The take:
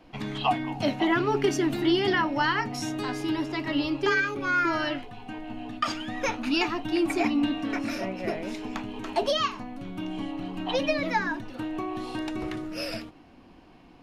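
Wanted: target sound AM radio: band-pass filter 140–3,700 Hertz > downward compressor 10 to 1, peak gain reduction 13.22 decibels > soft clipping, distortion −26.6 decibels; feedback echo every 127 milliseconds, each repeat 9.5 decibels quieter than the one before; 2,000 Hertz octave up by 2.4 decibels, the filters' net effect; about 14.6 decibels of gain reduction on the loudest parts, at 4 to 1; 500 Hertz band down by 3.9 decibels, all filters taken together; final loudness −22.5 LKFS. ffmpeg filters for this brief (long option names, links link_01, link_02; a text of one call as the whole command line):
ffmpeg -i in.wav -af "equalizer=frequency=500:width_type=o:gain=-6,equalizer=frequency=2000:width_type=o:gain=4,acompressor=threshold=-38dB:ratio=4,highpass=140,lowpass=3700,aecho=1:1:127|254|381|508:0.335|0.111|0.0365|0.012,acompressor=threshold=-45dB:ratio=10,asoftclip=threshold=-36.5dB,volume=26.5dB" out.wav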